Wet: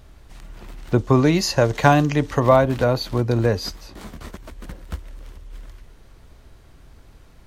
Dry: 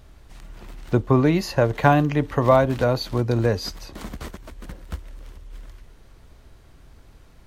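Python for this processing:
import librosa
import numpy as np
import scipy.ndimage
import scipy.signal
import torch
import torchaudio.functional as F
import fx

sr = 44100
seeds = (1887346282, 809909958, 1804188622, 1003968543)

y = fx.peak_eq(x, sr, hz=6300.0, db=10.0, octaves=1.4, at=(0.98, 2.4))
y = fx.detune_double(y, sr, cents=fx.line((3.75, 44.0), (4.3, 56.0)), at=(3.75, 4.3), fade=0.02)
y = y * librosa.db_to_amplitude(1.5)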